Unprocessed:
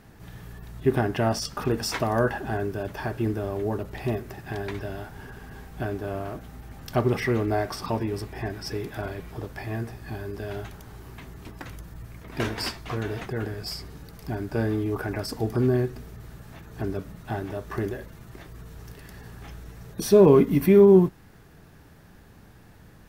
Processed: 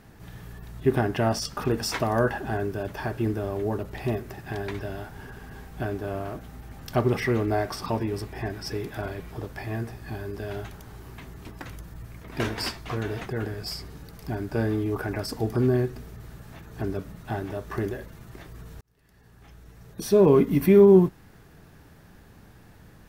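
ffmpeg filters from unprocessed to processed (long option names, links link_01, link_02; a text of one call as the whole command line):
ffmpeg -i in.wav -filter_complex "[0:a]asplit=2[link_01][link_02];[link_01]atrim=end=18.81,asetpts=PTS-STARTPTS,afade=type=out:start_time=18.806:duration=0.004:curve=hsin[link_03];[link_02]atrim=start=18.81,asetpts=PTS-STARTPTS,afade=type=in:duration=1.88[link_04];[link_03][link_04]concat=n=2:v=0:a=1" out.wav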